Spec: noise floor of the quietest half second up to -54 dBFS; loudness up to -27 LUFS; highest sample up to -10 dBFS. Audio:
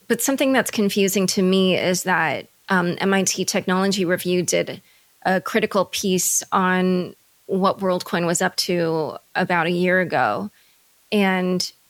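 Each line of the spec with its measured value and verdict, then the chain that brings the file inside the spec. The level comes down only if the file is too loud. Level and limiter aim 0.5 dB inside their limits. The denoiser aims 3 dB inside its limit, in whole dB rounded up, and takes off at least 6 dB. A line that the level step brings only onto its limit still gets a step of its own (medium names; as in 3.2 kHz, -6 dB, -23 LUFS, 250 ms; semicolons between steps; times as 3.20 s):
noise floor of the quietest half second -57 dBFS: pass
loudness -20.5 LUFS: fail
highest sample -5.0 dBFS: fail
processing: trim -7 dB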